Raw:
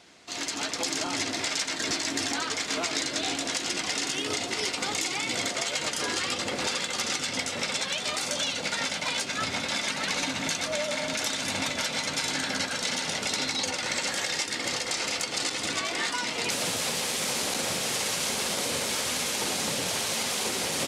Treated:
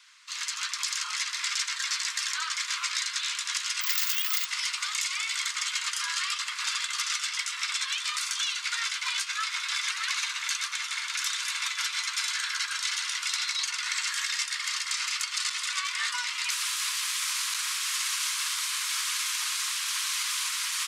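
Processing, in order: 3.81–4.45 s: careless resampling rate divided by 2×, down none, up zero stuff; steep high-pass 1 kHz 96 dB/octave

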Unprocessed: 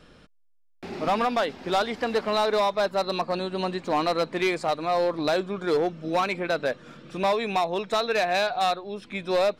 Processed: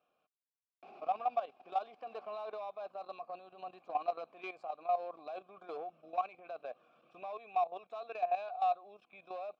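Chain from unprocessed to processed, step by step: vowel filter a; level held to a coarse grid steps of 13 dB; trim -2.5 dB

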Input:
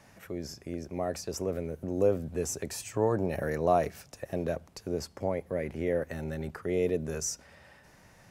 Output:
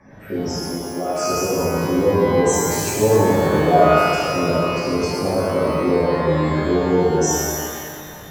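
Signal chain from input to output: 0.64–1.21 s: high-pass 600 Hz 6 dB/octave; spectral gate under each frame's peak -15 dB strong; in parallel at 0 dB: compression, threshold -40 dBFS, peak gain reduction 18 dB; on the sum: rotary cabinet horn 5.5 Hz; pitch-shifted reverb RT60 2 s, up +12 st, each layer -8 dB, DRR -11.5 dB; trim +2 dB

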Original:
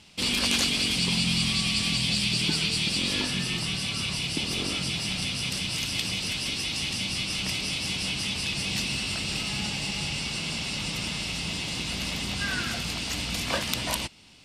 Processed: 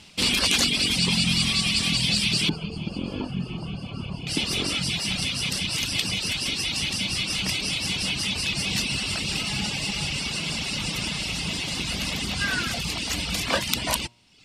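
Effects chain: de-hum 118.6 Hz, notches 9; reverb removal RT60 0.83 s; 2.49–4.27 s: boxcar filter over 23 samples; trim +5 dB

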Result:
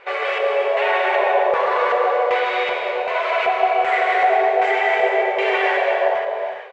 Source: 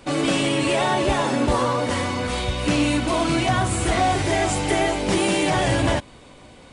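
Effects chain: loudspeakers at several distances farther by 51 m -1 dB, 86 m -8 dB; peak limiter -13.5 dBFS, peak gain reduction 7.5 dB; FFT band-pass 370–8200 Hz; LFO low-pass square 1.3 Hz 700–2100 Hz; gated-style reverb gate 460 ms flat, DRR 1 dB; trim +1 dB

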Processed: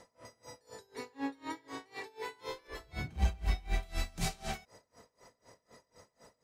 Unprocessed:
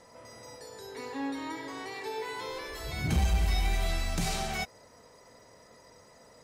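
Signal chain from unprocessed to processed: 2.67–3.83 s: treble shelf 4.7 kHz -9.5 dB; logarithmic tremolo 4 Hz, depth 26 dB

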